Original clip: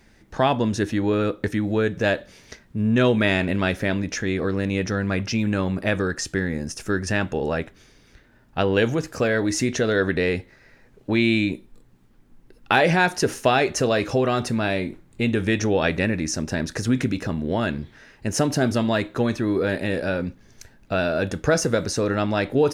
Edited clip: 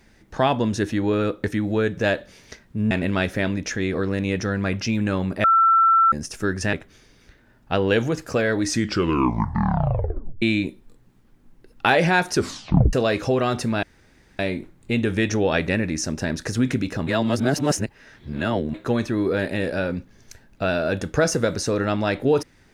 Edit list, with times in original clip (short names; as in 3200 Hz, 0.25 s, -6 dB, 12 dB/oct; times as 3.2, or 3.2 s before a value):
2.91–3.37 cut
5.9–6.58 bleep 1340 Hz -12.5 dBFS
7.19–7.59 cut
9.48 tape stop 1.80 s
13.19 tape stop 0.60 s
14.69 insert room tone 0.56 s
17.37–19.04 reverse